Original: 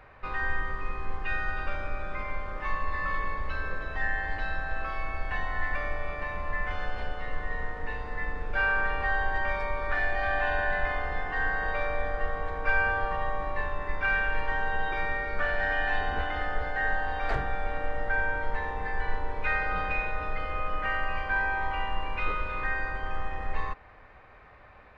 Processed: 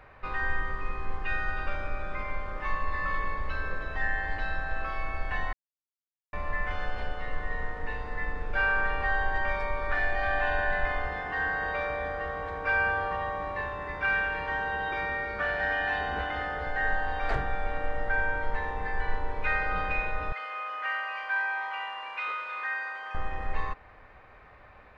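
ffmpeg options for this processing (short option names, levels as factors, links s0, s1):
-filter_complex "[0:a]asettb=1/sr,asplit=3[s0][s1][s2];[s0]atrim=end=11.074[s3];[s1]atrim=start=11.07:end=16.67,asetpts=PTS-STARTPTS,afade=t=in:d=0.004:c=qsin,afade=t=out:st=5.596:d=0.004:c=qsin,highpass=61[s4];[s2]atrim=start=16.666[s5];[s3][s4]acrossfade=d=0.004:c1=hsin:c2=qsin[s6];[s6][s5]acrossfade=d=0.004:c1=qsin:c2=hsin,asettb=1/sr,asplit=3[s7][s8][s9];[s7]atrim=end=20.324[s10];[s8]atrim=start=20.32:end=23.15,asetpts=PTS-STARTPTS,afade=t=in:d=0.004:c=qsin,afade=t=out:st=2.826:d=0.004:c=qsin,highpass=880[s11];[s9]atrim=start=23.146[s12];[s10][s11]acrossfade=d=0.004:c1=hsin:c2=qsin[s13];[s13][s12]acrossfade=d=0.004:c1=qsin:c2=hsin,asplit=3[s14][s15][s16];[s14]atrim=end=5.53,asetpts=PTS-STARTPTS,afade=t=out:st=5.526:d=0.004:c=hsin[s17];[s15]atrim=start=5.53:end=6.33,asetpts=PTS-STARTPTS,volume=0[s18];[s16]atrim=start=6.33,asetpts=PTS-STARTPTS,afade=t=in:d=0.004:c=hsin[s19];[s17][s18][s19]concat=n=3:v=0:a=1"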